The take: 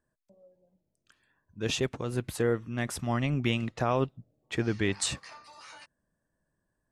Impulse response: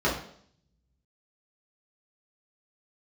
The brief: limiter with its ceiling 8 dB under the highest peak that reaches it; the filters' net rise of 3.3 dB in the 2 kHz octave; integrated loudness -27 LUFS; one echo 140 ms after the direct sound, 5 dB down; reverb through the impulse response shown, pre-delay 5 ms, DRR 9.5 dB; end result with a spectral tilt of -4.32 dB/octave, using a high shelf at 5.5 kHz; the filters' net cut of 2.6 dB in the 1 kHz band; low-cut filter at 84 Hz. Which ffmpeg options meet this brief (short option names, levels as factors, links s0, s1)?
-filter_complex "[0:a]highpass=84,equalizer=f=1000:t=o:g=-5,equalizer=f=2000:t=o:g=4.5,highshelf=f=5500:g=5.5,alimiter=limit=0.112:level=0:latency=1,aecho=1:1:140:0.562,asplit=2[s0][s1];[1:a]atrim=start_sample=2205,adelay=5[s2];[s1][s2]afir=irnorm=-1:irlink=0,volume=0.0668[s3];[s0][s3]amix=inputs=2:normalize=0,volume=1.58"